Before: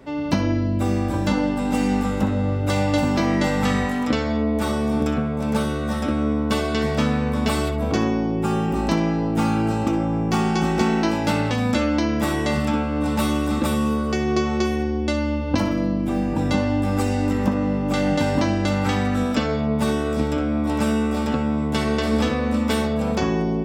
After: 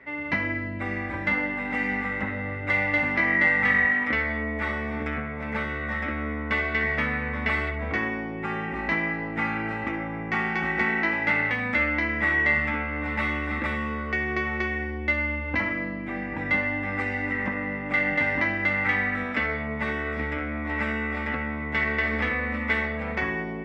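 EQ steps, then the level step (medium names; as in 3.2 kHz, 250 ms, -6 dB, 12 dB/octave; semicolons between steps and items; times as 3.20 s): resonant low-pass 2 kHz, resonance Q 9.8; tilt EQ +2 dB/octave; peaking EQ 70 Hz +10.5 dB 0.45 oct; -7.5 dB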